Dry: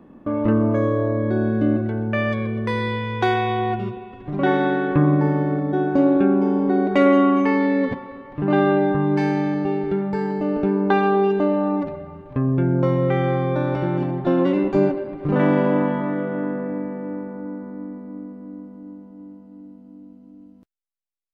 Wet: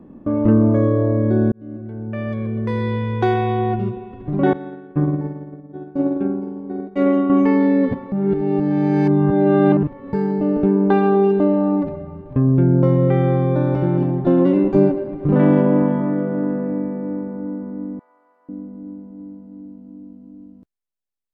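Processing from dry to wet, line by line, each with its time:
0:01.52–0:03.02: fade in
0:04.53–0:07.30: downward expander −10 dBFS
0:08.12–0:10.13: reverse
0:15.61–0:16.49: high-shelf EQ 4,300 Hz −9.5 dB
0:17.99–0:18.49: high-pass filter 850 Hz 24 dB per octave
whole clip: tilt shelving filter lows +6 dB, about 730 Hz

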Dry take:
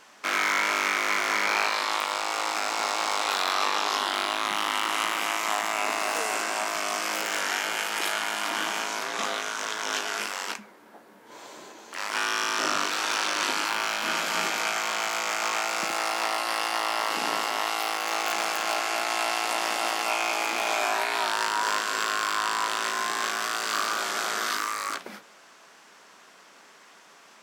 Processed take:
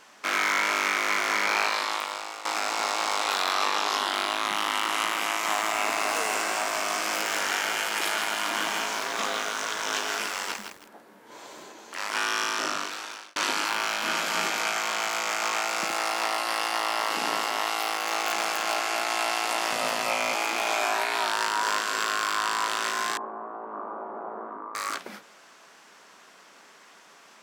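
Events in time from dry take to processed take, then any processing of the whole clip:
0:01.75–0:02.45: fade out, to −13 dB
0:05.28–0:11.64: feedback echo at a low word length 161 ms, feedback 35%, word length 7 bits, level −6 dB
0:12.41–0:13.36: fade out
0:19.72–0:20.35: frequency shifter −82 Hz
0:23.17–0:24.75: elliptic band-pass filter 200–970 Hz, stop band 70 dB

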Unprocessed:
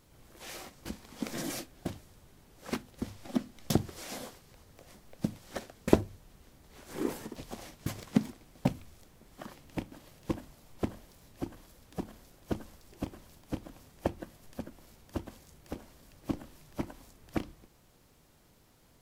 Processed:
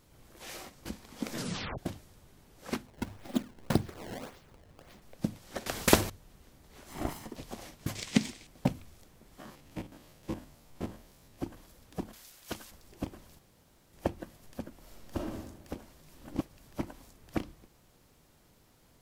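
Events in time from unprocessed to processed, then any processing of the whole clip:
0:01.35: tape stop 0.43 s
0:02.86–0:05.02: sample-and-hold swept by an LFO 21×, swing 160% 1.8 Hz
0:05.66–0:06.10: every bin compressed towards the loudest bin 2 to 1
0:06.89–0:07.31: lower of the sound and its delayed copy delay 0.97 ms
0:07.95–0:08.47: flat-topped bell 4,100 Hz +12 dB 2.5 octaves
0:09.40–0:11.41: spectrum averaged block by block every 50 ms
0:12.13–0:12.71: tilt shelving filter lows −10 dB
0:13.39–0:13.93: fill with room tone
0:14.79–0:15.38: thrown reverb, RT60 1 s, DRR −1.5 dB
0:16.03–0:16.67: reverse

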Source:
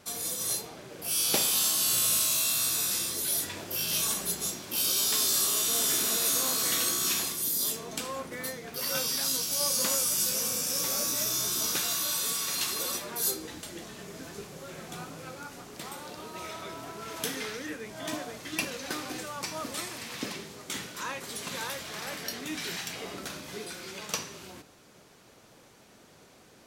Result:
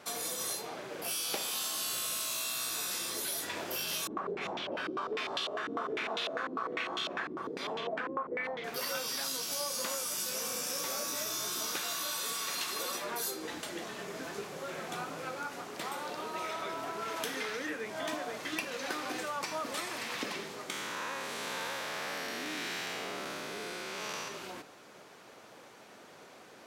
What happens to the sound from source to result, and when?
0:04.07–0:08.64: low-pass on a step sequencer 10 Hz 320–3,200 Hz
0:20.70–0:24.28: spectrum smeared in time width 266 ms
whole clip: high-pass filter 610 Hz 6 dB per octave; high-shelf EQ 3,300 Hz −11.5 dB; downward compressor 5 to 1, threshold −41 dBFS; level +8 dB

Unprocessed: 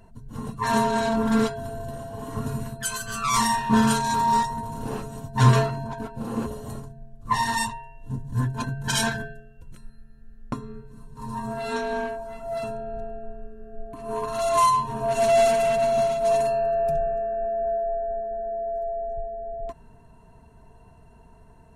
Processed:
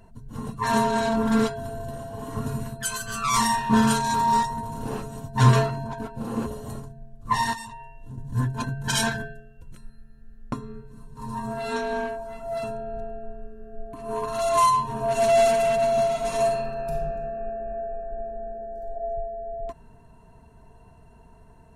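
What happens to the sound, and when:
0:07.53–0:08.18: downward compressor 4 to 1, threshold −36 dBFS
0:16.10–0:18.92: thrown reverb, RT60 1.1 s, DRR −1 dB

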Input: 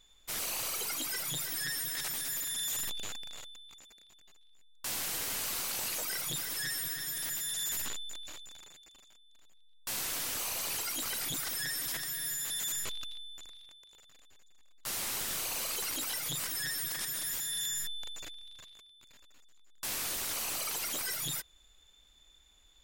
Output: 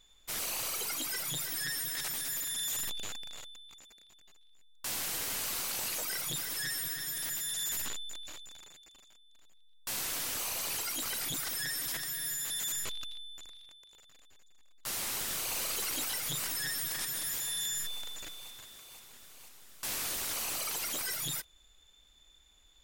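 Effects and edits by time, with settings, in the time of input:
0:14.98–0:15.56: delay throw 490 ms, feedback 80%, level −6.5 dB

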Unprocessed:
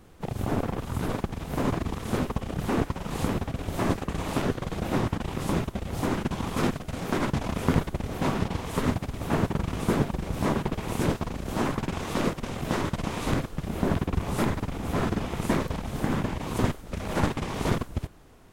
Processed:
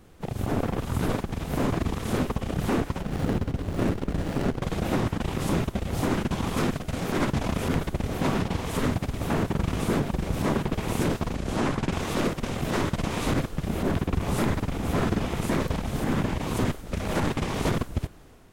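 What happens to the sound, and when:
0:03.01–0:04.62: windowed peak hold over 33 samples
0:11.35–0:11.92: low-pass filter 9,500 Hz
whole clip: parametric band 980 Hz −2 dB; brickwall limiter −18.5 dBFS; automatic gain control gain up to 3.5 dB

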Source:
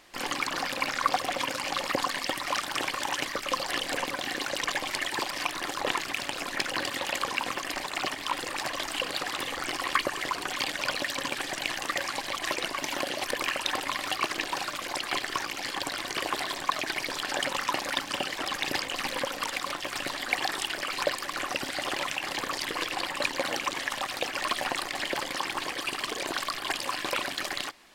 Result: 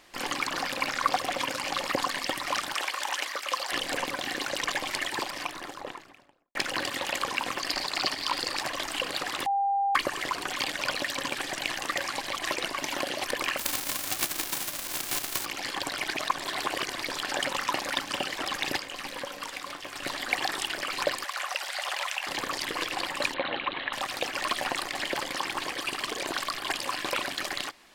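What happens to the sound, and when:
0:02.74–0:03.72: high-pass filter 600 Hz
0:04.99–0:06.55: fade out and dull
0:07.60–0:08.59: parametric band 4,600 Hz +13 dB 0.36 octaves
0:09.46–0:09.95: beep over 796 Hz −23 dBFS
0:13.57–0:15.44: spectral envelope flattened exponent 0.1
0:15.99–0:17.01: reverse
0:18.77–0:20.03: tuned comb filter 95 Hz, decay 0.35 s
0:21.24–0:22.27: high-pass filter 620 Hz 24 dB per octave
0:23.34–0:23.93: Chebyshev low-pass filter 4,000 Hz, order 6

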